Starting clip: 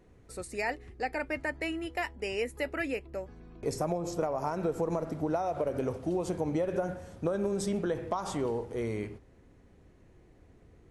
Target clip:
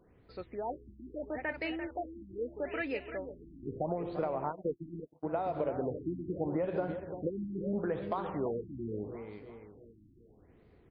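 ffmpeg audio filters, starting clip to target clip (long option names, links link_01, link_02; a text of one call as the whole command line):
ffmpeg -i in.wav -filter_complex "[0:a]aecho=1:1:343|686|1029|1372|1715:0.335|0.164|0.0804|0.0394|0.0193,asplit=3[link_01][link_02][link_03];[link_01]afade=type=out:start_time=4.51:duration=0.02[link_04];[link_02]agate=range=-43dB:threshold=-29dB:ratio=16:detection=peak,afade=type=in:start_time=4.51:duration=0.02,afade=type=out:start_time=5.36:duration=0.02[link_05];[link_03]afade=type=in:start_time=5.36:duration=0.02[link_06];[link_04][link_05][link_06]amix=inputs=3:normalize=0,lowshelf=frequency=72:gain=-8,afftfilt=real='re*lt(b*sr/1024,340*pow(5100/340,0.5+0.5*sin(2*PI*0.77*pts/sr)))':imag='im*lt(b*sr/1024,340*pow(5100/340,0.5+0.5*sin(2*PI*0.77*pts/sr)))':win_size=1024:overlap=0.75,volume=-2.5dB" out.wav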